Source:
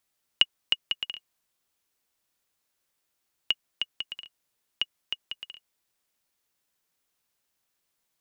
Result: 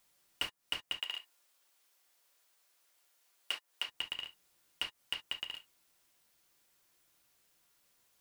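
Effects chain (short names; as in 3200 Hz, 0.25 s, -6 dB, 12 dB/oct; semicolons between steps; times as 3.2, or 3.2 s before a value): cycle switcher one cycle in 3, inverted; compressor 6:1, threshold -34 dBFS, peak gain reduction 17.5 dB; dynamic EQ 3500 Hz, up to -5 dB, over -51 dBFS, Q 0.96; non-linear reverb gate 90 ms falling, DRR 6 dB; overloaded stage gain 29 dB; 1.01–3.88 HPF 430 Hz 12 dB/oct; gain +5.5 dB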